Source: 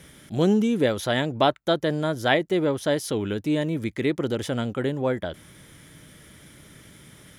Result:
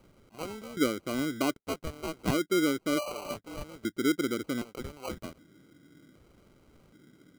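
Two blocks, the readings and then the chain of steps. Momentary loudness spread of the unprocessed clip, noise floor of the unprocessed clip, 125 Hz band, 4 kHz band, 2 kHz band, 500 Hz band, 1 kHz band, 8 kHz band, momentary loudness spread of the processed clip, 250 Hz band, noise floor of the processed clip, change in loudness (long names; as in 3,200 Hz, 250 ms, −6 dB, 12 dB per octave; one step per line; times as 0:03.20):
6 LU, −51 dBFS, −12.5 dB, −7.5 dB, −7.5 dB, −10.0 dB, −9.5 dB, −1.5 dB, 13 LU, −6.0 dB, −66 dBFS, −7.5 dB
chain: healed spectral selection 0:02.96–0:03.34, 570–1,300 Hz before
auto-filter band-pass square 0.65 Hz 300–1,600 Hz
decimation without filtering 25×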